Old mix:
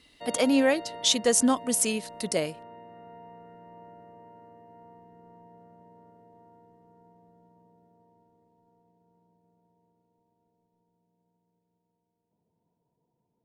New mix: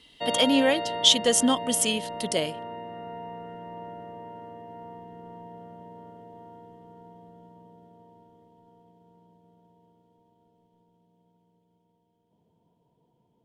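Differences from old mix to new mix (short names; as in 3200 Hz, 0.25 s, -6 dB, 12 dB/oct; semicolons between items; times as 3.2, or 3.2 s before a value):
background +9.0 dB; master: add bell 3200 Hz +15 dB 0.22 oct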